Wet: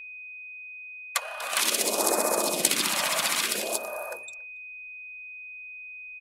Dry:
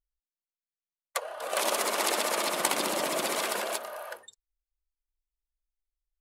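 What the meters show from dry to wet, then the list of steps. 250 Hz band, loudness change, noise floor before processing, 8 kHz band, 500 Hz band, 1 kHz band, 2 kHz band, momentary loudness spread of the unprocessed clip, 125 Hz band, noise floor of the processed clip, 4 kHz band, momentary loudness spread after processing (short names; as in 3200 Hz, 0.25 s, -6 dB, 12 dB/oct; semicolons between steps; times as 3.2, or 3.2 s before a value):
+3.0 dB, +3.5 dB, under -85 dBFS, +6.5 dB, +1.0 dB, 0.0 dB, +4.0 dB, 12 LU, +4.0 dB, -42 dBFS, +5.0 dB, 16 LU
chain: phaser stages 2, 0.56 Hz, lowest notch 350–2800 Hz; speakerphone echo 0.28 s, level -25 dB; whine 2500 Hz -45 dBFS; gain +6 dB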